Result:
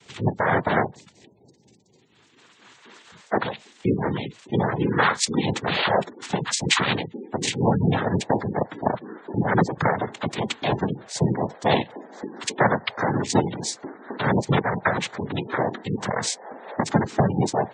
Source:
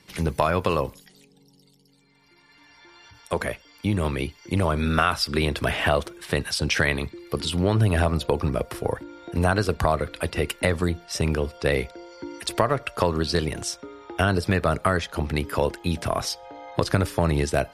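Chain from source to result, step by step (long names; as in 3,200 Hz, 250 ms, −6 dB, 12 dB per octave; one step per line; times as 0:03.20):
cochlear-implant simulation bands 6
gate on every frequency bin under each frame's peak −20 dB strong
shaped tremolo triangle 4.2 Hz, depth 60%
level +5 dB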